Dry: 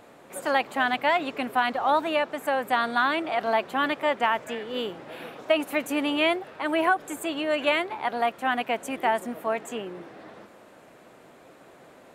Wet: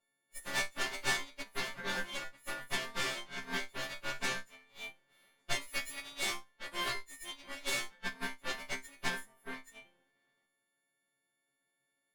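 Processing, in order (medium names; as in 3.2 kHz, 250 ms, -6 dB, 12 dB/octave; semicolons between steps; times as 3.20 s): partials quantised in pitch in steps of 4 st; Chebyshev shaper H 8 -8 dB, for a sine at -7.5 dBFS; chord resonator C3 fifth, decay 0.32 s; upward expansion 2.5:1, over -41 dBFS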